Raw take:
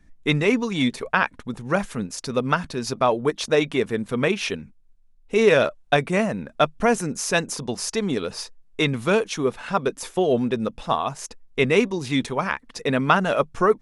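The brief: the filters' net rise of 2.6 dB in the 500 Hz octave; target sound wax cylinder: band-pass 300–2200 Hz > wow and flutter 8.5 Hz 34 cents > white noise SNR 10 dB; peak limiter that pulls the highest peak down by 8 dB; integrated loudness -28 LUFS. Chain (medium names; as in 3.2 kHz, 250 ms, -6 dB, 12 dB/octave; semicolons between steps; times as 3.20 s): peaking EQ 500 Hz +4 dB; peak limiter -10.5 dBFS; band-pass 300–2200 Hz; wow and flutter 8.5 Hz 34 cents; white noise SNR 10 dB; trim -3.5 dB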